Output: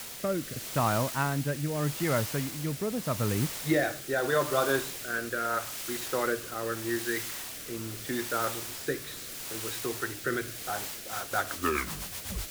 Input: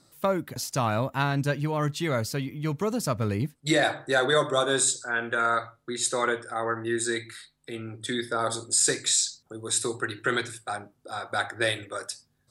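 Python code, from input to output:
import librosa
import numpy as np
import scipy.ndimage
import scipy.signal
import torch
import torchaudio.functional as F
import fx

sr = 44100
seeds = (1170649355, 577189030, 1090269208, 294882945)

y = fx.tape_stop_end(x, sr, length_s=1.13)
y = scipy.signal.sosfilt(scipy.signal.cheby1(2, 1.0, 1900.0, 'lowpass', fs=sr, output='sos'), y)
y = fx.quant_dither(y, sr, seeds[0], bits=6, dither='triangular')
y = fx.rotary_switch(y, sr, hz=0.8, then_hz=8.0, switch_at_s=10.69)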